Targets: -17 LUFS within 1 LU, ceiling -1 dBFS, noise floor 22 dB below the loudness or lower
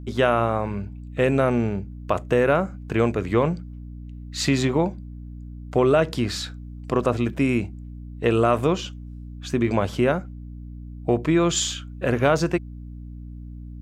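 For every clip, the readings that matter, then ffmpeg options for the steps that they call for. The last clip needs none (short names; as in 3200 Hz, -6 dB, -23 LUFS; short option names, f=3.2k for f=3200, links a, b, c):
hum 60 Hz; harmonics up to 300 Hz; hum level -35 dBFS; loudness -23.0 LUFS; peak -6.0 dBFS; loudness target -17.0 LUFS
-> -af "bandreject=f=60:t=h:w=6,bandreject=f=120:t=h:w=6,bandreject=f=180:t=h:w=6,bandreject=f=240:t=h:w=6,bandreject=f=300:t=h:w=6"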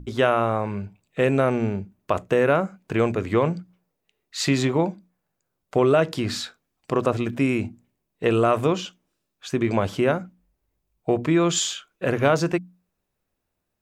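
hum none; loudness -23.0 LUFS; peak -5.0 dBFS; loudness target -17.0 LUFS
-> -af "volume=6dB,alimiter=limit=-1dB:level=0:latency=1"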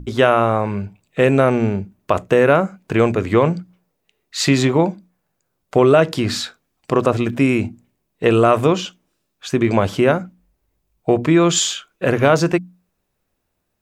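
loudness -17.5 LUFS; peak -1.0 dBFS; noise floor -73 dBFS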